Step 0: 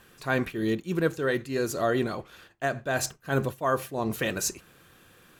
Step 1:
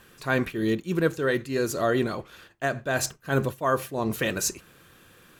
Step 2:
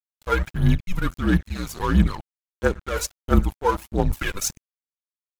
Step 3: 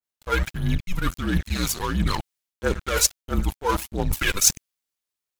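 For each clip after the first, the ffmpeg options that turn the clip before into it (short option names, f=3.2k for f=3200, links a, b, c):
-af "equalizer=f=750:w=5.6:g=-3,volume=2dB"
-af "afreqshift=-190,aphaser=in_gain=1:out_gain=1:delay=2.2:decay=0.68:speed=1.5:type=triangular,aeval=exprs='sgn(val(0))*max(abs(val(0))-0.0237,0)':c=same"
-af "areverse,acompressor=threshold=-27dB:ratio=6,areverse,adynamicequalizer=threshold=0.00447:dfrequency=1900:dqfactor=0.7:tfrequency=1900:tqfactor=0.7:attack=5:release=100:ratio=0.375:range=3.5:mode=boostabove:tftype=highshelf,volume=7dB"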